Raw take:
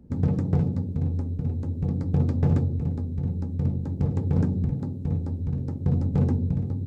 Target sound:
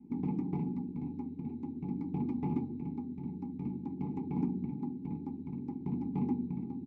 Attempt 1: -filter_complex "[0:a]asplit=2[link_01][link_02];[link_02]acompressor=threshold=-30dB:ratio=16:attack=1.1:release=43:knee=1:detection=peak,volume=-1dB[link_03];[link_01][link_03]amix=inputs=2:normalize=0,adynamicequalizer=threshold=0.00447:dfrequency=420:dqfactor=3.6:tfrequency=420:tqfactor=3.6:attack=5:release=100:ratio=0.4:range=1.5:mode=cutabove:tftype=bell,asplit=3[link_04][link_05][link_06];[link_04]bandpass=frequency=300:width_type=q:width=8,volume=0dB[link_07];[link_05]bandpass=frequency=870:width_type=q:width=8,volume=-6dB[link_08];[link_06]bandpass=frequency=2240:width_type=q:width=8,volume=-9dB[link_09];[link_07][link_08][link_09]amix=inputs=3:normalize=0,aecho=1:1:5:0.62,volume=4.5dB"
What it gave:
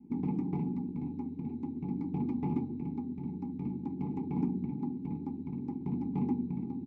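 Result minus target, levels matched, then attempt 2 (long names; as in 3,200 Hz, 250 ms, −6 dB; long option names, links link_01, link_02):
downward compressor: peak gain reduction −9.5 dB
-filter_complex "[0:a]asplit=2[link_01][link_02];[link_02]acompressor=threshold=-40dB:ratio=16:attack=1.1:release=43:knee=1:detection=peak,volume=-1dB[link_03];[link_01][link_03]amix=inputs=2:normalize=0,adynamicequalizer=threshold=0.00447:dfrequency=420:dqfactor=3.6:tfrequency=420:tqfactor=3.6:attack=5:release=100:ratio=0.4:range=1.5:mode=cutabove:tftype=bell,asplit=3[link_04][link_05][link_06];[link_04]bandpass=frequency=300:width_type=q:width=8,volume=0dB[link_07];[link_05]bandpass=frequency=870:width_type=q:width=8,volume=-6dB[link_08];[link_06]bandpass=frequency=2240:width_type=q:width=8,volume=-9dB[link_09];[link_07][link_08][link_09]amix=inputs=3:normalize=0,aecho=1:1:5:0.62,volume=4.5dB"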